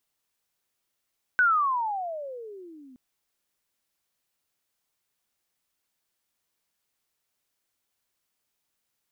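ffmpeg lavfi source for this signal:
-f lavfi -i "aevalsrc='pow(10,(-16.5-30.5*t/1.57)/20)*sin(2*PI*1520*1.57/(-31.5*log(2)/12)*(exp(-31.5*log(2)/12*t/1.57)-1))':d=1.57:s=44100"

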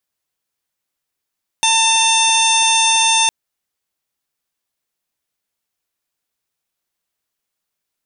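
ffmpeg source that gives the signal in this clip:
-f lavfi -i "aevalsrc='0.141*sin(2*PI*897*t)+0.0299*sin(2*PI*1794*t)+0.119*sin(2*PI*2691*t)+0.15*sin(2*PI*3588*t)+0.0224*sin(2*PI*4485*t)+0.0501*sin(2*PI*5382*t)+0.112*sin(2*PI*6279*t)+0.02*sin(2*PI*7176*t)+0.0168*sin(2*PI*8073*t)+0.1*sin(2*PI*8970*t)':d=1.66:s=44100"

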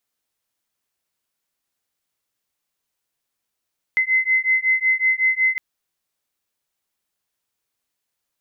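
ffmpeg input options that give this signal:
-f lavfi -i "aevalsrc='0.112*(sin(2*PI*2050*t)+sin(2*PI*2055.4*t))':d=1.61:s=44100"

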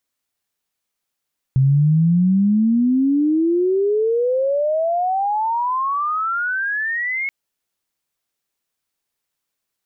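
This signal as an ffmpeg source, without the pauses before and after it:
-f lavfi -i "aevalsrc='pow(10,(-11-9*t/5.73)/20)*sin(2*PI*130*5.73/log(2200/130)*(exp(log(2200/130)*t/5.73)-1))':d=5.73:s=44100"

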